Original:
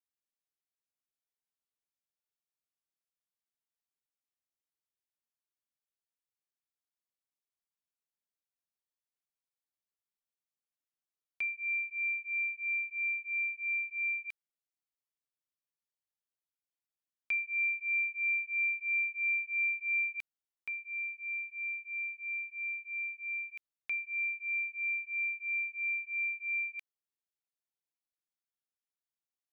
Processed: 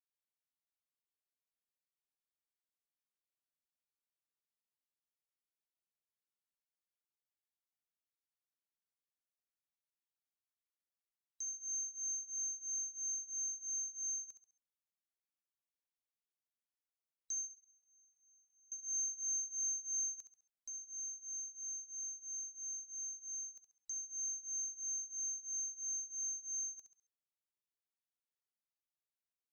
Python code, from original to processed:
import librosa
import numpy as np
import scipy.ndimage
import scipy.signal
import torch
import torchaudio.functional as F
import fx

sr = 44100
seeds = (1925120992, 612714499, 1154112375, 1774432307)

y = fx.band_swap(x, sr, width_hz=4000)
y = fx.gate_flip(y, sr, shuts_db=-36.0, range_db=-33, at=(17.49, 18.72))
y = fx.echo_feedback(y, sr, ms=68, feedback_pct=36, wet_db=-9.5)
y = F.gain(torch.from_numpy(y), -8.5).numpy()